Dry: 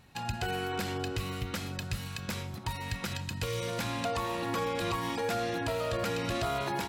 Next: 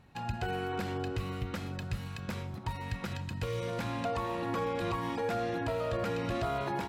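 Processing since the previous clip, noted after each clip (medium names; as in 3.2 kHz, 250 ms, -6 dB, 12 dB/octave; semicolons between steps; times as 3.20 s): treble shelf 2.8 kHz -11.5 dB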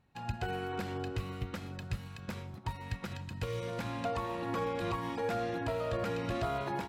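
upward expansion 1.5:1, over -52 dBFS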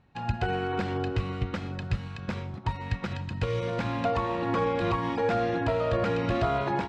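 distance through air 110 m; trim +8 dB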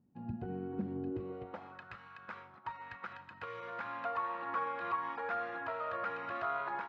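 band-pass sweep 230 Hz -> 1.3 kHz, 1.02–1.80 s; trim -1.5 dB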